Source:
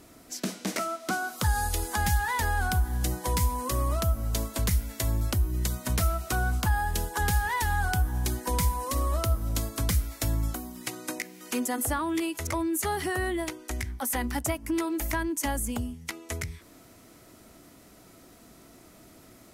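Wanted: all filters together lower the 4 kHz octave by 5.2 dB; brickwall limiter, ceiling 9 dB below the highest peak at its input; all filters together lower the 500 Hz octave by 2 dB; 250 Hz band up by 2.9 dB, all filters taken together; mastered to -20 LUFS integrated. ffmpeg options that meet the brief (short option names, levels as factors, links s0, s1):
-af "equalizer=f=250:t=o:g=6,equalizer=f=500:t=o:g=-6,equalizer=f=4000:t=o:g=-7,volume=3.98,alimiter=limit=0.299:level=0:latency=1"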